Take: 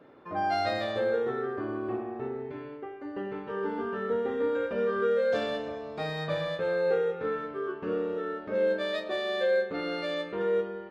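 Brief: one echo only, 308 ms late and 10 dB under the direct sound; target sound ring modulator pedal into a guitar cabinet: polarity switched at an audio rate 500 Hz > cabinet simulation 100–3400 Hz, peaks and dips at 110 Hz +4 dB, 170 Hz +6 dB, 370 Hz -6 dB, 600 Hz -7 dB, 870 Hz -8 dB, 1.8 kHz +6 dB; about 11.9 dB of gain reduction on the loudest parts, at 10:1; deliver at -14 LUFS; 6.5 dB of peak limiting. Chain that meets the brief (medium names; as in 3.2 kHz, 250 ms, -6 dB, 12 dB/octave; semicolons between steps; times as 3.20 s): compression 10:1, threshold -35 dBFS; peak limiter -33 dBFS; delay 308 ms -10 dB; polarity switched at an audio rate 500 Hz; cabinet simulation 100–3400 Hz, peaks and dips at 110 Hz +4 dB, 170 Hz +6 dB, 370 Hz -6 dB, 600 Hz -7 dB, 870 Hz -8 dB, 1.8 kHz +6 dB; trim +27.5 dB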